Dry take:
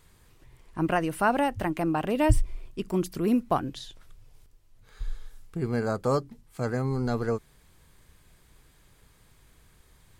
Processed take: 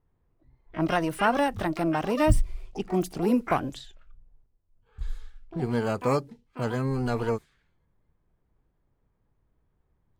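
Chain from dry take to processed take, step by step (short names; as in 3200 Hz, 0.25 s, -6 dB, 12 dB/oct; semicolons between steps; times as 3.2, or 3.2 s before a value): low-pass opened by the level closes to 830 Hz, open at -25 dBFS; spectral noise reduction 12 dB; harmoniser +12 st -10 dB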